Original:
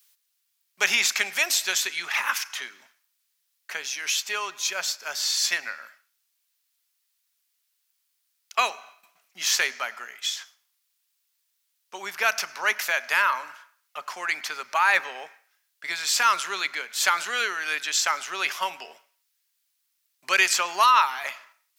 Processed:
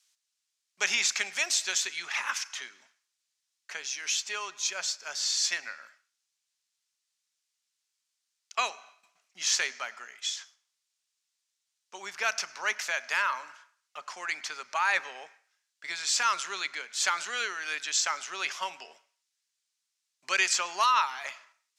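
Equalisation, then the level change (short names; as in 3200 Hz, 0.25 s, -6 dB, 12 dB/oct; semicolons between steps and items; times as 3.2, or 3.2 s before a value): synth low-pass 7100 Hz, resonance Q 1.6; -6.5 dB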